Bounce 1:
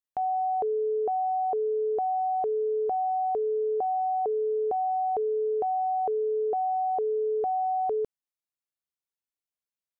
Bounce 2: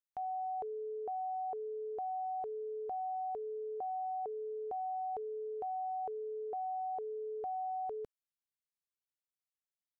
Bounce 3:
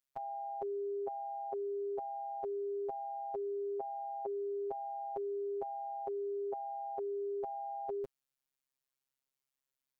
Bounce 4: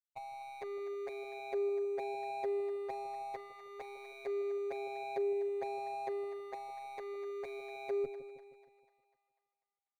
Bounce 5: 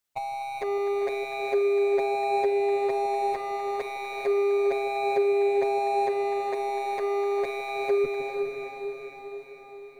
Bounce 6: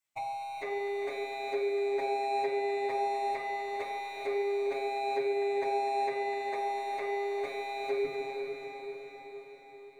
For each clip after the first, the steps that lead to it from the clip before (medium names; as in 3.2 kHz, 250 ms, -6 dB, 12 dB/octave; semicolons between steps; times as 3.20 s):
peaking EQ 360 Hz -6.5 dB 2.2 oct; trim -7.5 dB
robot voice 134 Hz; trim +6 dB
median filter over 41 samples; two-band feedback delay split 700 Hz, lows 157 ms, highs 247 ms, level -11.5 dB; endless flanger 6 ms -0.31 Hz; trim +5.5 dB
in parallel at -1 dB: peak limiter -34.5 dBFS, peak gain reduction 8.5 dB; on the sum: echo that smears into a reverb 454 ms, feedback 59%, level -5 dB; trim +8 dB
reverberation RT60 1.1 s, pre-delay 3 ms, DRR -6 dB; trim -9 dB